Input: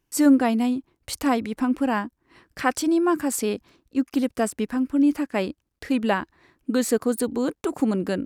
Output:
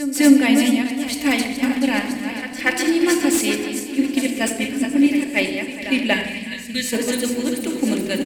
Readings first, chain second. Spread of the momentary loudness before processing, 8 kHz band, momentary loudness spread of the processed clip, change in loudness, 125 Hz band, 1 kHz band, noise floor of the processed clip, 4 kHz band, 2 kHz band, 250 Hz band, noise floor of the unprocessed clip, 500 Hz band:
10 LU, +7.0 dB, 8 LU, +4.5 dB, no reading, -2.0 dB, -31 dBFS, +12.0 dB, +10.5 dB, +4.5 dB, -77 dBFS, +1.5 dB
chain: backward echo that repeats 211 ms, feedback 64%, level -6 dB; hum notches 50/100/150/200/250 Hz; on a send: feedback delay 979 ms, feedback 48%, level -15.5 dB; on the sum: gate -22 dBFS, range -7 dB; reverse; upward compressor, threshold -24 dBFS; reverse; resonant high shelf 1.7 kHz +8 dB, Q 3; pre-echo 238 ms -13 dB; time-frequency box 6.14–6.93 s, 250–1600 Hz -12 dB; simulated room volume 3600 m³, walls furnished, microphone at 2.5 m; slew-rate limiter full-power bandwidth 750 Hz

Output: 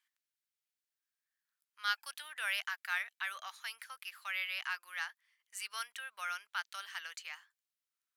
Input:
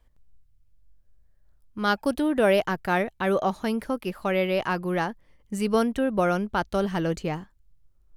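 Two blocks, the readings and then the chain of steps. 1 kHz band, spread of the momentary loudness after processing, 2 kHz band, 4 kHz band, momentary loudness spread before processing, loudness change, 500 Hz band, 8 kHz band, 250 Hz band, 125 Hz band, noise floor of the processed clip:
-15.5 dB, 10 LU, -5.5 dB, -4.0 dB, 8 LU, -14.0 dB, -38.5 dB, -4.0 dB, under -40 dB, under -40 dB, under -85 dBFS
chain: high-pass 1.5 kHz 24 dB/octave; trim -4 dB

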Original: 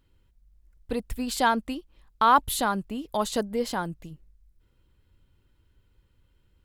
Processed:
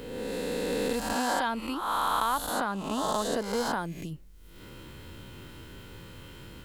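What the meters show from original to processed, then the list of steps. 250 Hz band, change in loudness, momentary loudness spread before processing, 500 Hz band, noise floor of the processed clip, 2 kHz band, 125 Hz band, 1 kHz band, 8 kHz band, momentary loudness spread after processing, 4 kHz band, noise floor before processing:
-1.5 dB, -3.5 dB, 15 LU, 0.0 dB, -49 dBFS, -1.5 dB, +0.5 dB, -4.0 dB, -1.0 dB, 19 LU, -0.5 dB, -67 dBFS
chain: reverse spectral sustain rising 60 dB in 1.31 s; three bands compressed up and down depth 100%; trim -6.5 dB

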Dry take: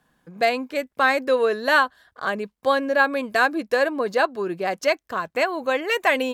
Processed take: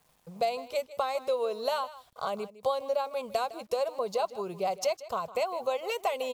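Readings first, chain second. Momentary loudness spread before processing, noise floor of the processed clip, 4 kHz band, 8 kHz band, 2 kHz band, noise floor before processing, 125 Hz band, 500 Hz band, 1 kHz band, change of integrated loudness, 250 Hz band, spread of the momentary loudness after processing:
8 LU, -66 dBFS, -9.0 dB, -3.5 dB, -21.5 dB, -73 dBFS, no reading, -7.5 dB, -8.5 dB, -9.5 dB, -16.5 dB, 4 LU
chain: compression 4:1, threshold -27 dBFS, peak gain reduction 12.5 dB; static phaser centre 710 Hz, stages 4; bit crusher 11-bit; on a send: delay 157 ms -16.5 dB; on the sum: trim +2 dB

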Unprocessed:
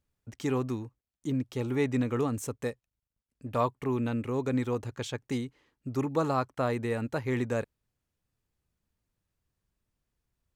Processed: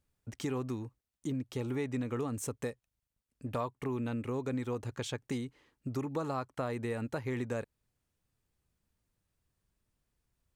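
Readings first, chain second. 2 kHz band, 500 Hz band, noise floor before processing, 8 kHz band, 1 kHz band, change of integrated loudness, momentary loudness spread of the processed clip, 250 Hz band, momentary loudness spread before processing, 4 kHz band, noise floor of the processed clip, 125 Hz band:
-5.5 dB, -6.0 dB, under -85 dBFS, -1.0 dB, -7.0 dB, -5.5 dB, 8 LU, -5.5 dB, 11 LU, -3.0 dB, under -85 dBFS, -5.0 dB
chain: peaking EQ 8.9 kHz +3.5 dB 0.23 oct; compression 3:1, threshold -35 dBFS, peak gain reduction 10 dB; trim +1 dB

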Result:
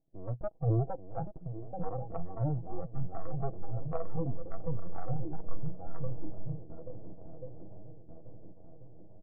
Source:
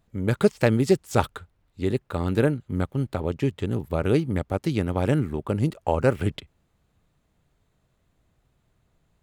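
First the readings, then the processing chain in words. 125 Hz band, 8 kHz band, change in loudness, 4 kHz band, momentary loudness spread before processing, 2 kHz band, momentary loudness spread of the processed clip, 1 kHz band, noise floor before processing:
-9.0 dB, under -35 dB, -13.5 dB, under -40 dB, 7 LU, under -25 dB, 20 LU, -11.0 dB, -70 dBFS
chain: full-wave rectifier; Chebyshev low-pass 720 Hz, order 4; comb 6.2 ms, depth 37%; dynamic bell 120 Hz, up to +7 dB, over -44 dBFS, Q 6.5; level rider gain up to 14 dB; peak limiter -10 dBFS, peak gain reduction 9 dB; compression 20:1, threshold -19 dBFS, peak gain reduction 7 dB; shuffle delay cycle 1388 ms, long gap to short 1.5:1, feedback 41%, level -6.5 dB; saturation -19.5 dBFS, distortion -13 dB; spectral noise reduction 15 dB; trim +3.5 dB

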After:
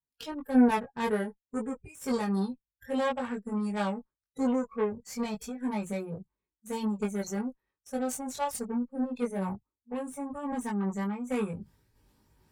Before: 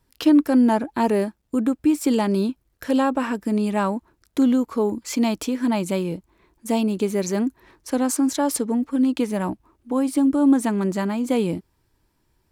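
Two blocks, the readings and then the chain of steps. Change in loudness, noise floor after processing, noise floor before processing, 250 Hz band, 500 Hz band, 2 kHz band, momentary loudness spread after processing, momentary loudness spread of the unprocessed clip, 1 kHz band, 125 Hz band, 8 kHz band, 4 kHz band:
-10.0 dB, under -85 dBFS, -69 dBFS, -11.0 dB, -8.5 dB, -6.5 dB, 10 LU, 10 LU, -7.5 dB, -8.0 dB, -11.0 dB, -11.0 dB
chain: spectral noise reduction 27 dB; reverse; upward compressor, threshold -23 dBFS; reverse; Chebyshev shaper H 2 -15 dB, 3 -14 dB, 8 -26 dB, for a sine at -9 dBFS; comb of notches 340 Hz; chorus voices 2, 0.16 Hz, delay 20 ms, depth 1.1 ms

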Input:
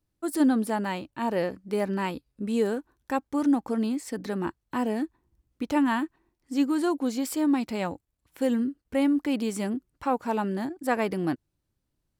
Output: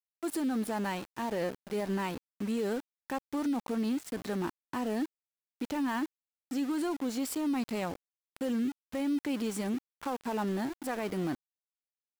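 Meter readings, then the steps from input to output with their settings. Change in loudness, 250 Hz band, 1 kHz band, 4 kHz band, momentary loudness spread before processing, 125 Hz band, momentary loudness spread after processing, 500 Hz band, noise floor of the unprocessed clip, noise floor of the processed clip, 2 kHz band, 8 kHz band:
-6.0 dB, -6.0 dB, -6.5 dB, -3.5 dB, 8 LU, -4.0 dB, 7 LU, -6.0 dB, -80 dBFS, under -85 dBFS, -5.5 dB, -3.0 dB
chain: peak limiter -22.5 dBFS, peak gain reduction 11.5 dB; small samples zeroed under -37.5 dBFS; trim -2.5 dB

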